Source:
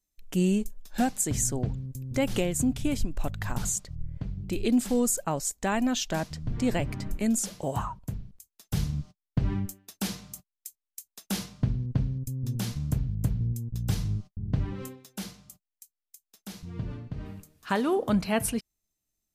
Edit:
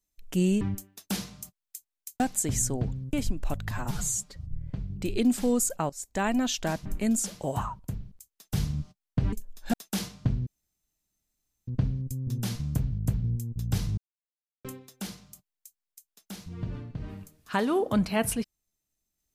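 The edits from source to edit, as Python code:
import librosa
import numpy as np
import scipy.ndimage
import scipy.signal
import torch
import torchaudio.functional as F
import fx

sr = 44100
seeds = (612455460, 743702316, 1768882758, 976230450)

y = fx.edit(x, sr, fx.swap(start_s=0.61, length_s=0.41, other_s=9.52, other_length_s=1.59),
    fx.cut(start_s=1.95, length_s=0.92),
    fx.stretch_span(start_s=3.45, length_s=0.53, factor=1.5),
    fx.fade_in_from(start_s=5.37, length_s=0.32, floor_db=-18.0),
    fx.cut(start_s=6.33, length_s=0.72),
    fx.insert_room_tone(at_s=11.84, length_s=1.21),
    fx.silence(start_s=14.14, length_s=0.67), tone=tone)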